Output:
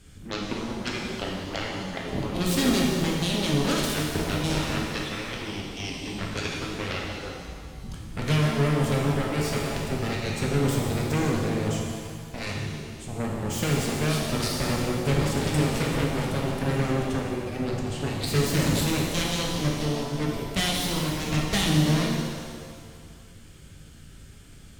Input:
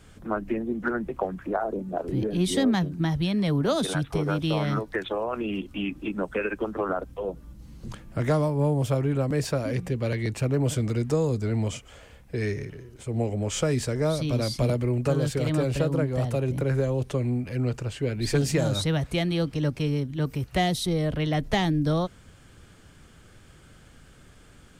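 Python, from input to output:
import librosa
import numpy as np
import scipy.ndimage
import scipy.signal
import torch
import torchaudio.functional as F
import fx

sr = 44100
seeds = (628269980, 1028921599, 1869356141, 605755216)

y = fx.cheby_harmonics(x, sr, harmonics=(7,), levels_db=(-10,), full_scale_db=-13.0)
y = fx.peak_eq(y, sr, hz=820.0, db=-11.0, octaves=2.5)
y = fx.rev_shimmer(y, sr, seeds[0], rt60_s=1.9, semitones=7, shimmer_db=-8, drr_db=-2.0)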